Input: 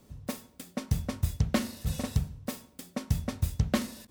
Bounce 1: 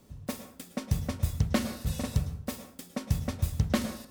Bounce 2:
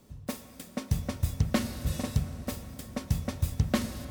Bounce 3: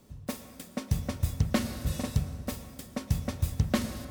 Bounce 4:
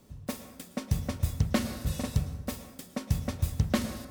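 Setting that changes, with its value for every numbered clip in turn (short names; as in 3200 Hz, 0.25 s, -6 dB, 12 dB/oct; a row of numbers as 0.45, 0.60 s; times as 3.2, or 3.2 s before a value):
plate-style reverb, RT60: 0.52, 5.2, 2.4, 1.2 s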